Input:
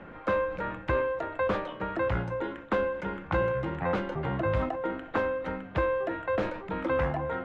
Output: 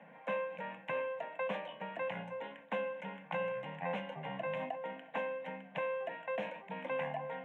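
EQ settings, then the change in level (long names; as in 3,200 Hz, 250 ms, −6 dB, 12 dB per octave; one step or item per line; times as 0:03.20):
dynamic equaliser 2,800 Hz, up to +6 dB, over −54 dBFS, Q 2.4
Butterworth high-pass 160 Hz 48 dB per octave
phaser with its sweep stopped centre 1,300 Hz, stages 6
−5.5 dB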